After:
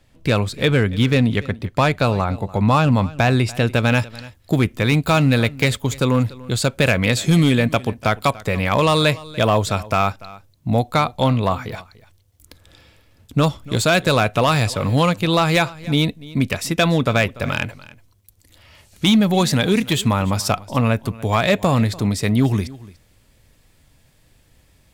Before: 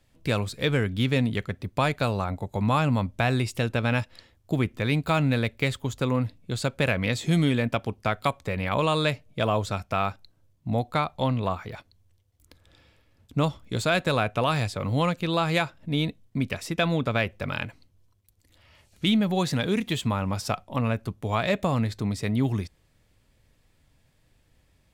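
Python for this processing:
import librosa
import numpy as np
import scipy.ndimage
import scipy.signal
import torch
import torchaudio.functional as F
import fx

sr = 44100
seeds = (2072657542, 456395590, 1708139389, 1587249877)

y = fx.high_shelf(x, sr, hz=5700.0, db=fx.steps((0.0, -4.0), (3.66, 6.0)))
y = np.clip(y, -10.0 ** (-16.5 / 20.0), 10.0 ** (-16.5 / 20.0))
y = y + 10.0 ** (-20.0 / 20.0) * np.pad(y, (int(291 * sr / 1000.0), 0))[:len(y)]
y = F.gain(torch.from_numpy(y), 8.0).numpy()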